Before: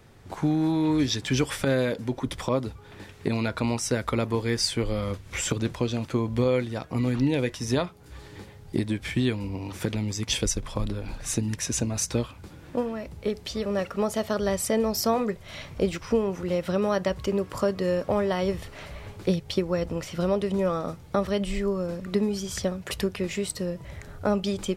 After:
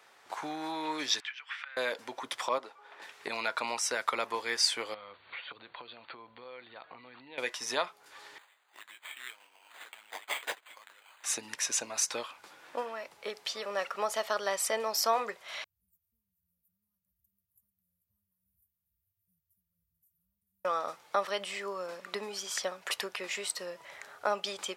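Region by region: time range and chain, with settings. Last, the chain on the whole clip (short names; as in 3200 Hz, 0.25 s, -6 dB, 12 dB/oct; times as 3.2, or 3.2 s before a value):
1.2–1.77 compressor 16:1, threshold -31 dBFS + Butterworth band-pass 2000 Hz, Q 1.1
2.58–3.02 HPF 500 Hz + tilt -3.5 dB/oct
4.94–7.38 compressor 4:1, threshold -38 dBFS + brick-wall FIR low-pass 4600 Hz + bell 71 Hz +9 dB 2 oct
8.38–11.24 flange 1.4 Hz, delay 6 ms, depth 4.4 ms, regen -50% + band-pass 6200 Hz, Q 0.78 + careless resampling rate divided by 8×, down none, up hold
15.64–20.65 inverse Chebyshev band-stop 340–4800 Hz, stop band 70 dB + echo 0.441 s -11.5 dB + mismatched tape noise reduction decoder only
whole clip: Chebyshev high-pass 920 Hz, order 2; high shelf 8700 Hz -5 dB; gain +1.5 dB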